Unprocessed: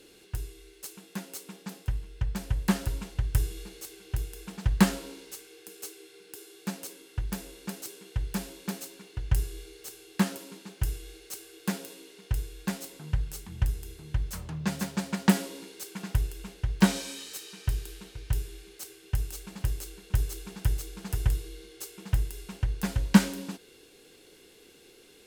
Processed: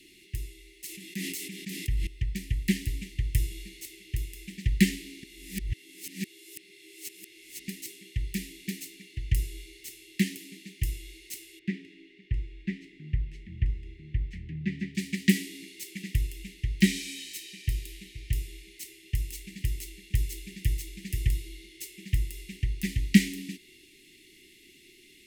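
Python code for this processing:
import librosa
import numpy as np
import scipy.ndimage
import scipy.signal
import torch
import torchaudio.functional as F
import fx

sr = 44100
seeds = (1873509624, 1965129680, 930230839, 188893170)

y = fx.sustainer(x, sr, db_per_s=23.0, at=(0.86, 2.07))
y = fx.lowpass(y, sr, hz=2000.0, slope=12, at=(11.59, 14.95))
y = fx.edit(y, sr, fx.reverse_span(start_s=5.23, length_s=2.45), tone=tone)
y = scipy.signal.sosfilt(scipy.signal.cheby1(5, 1.0, [380.0, 1900.0], 'bandstop', fs=sr, output='sos'), y)
y = fx.peak_eq(y, sr, hz=2000.0, db=7.5, octaves=0.99)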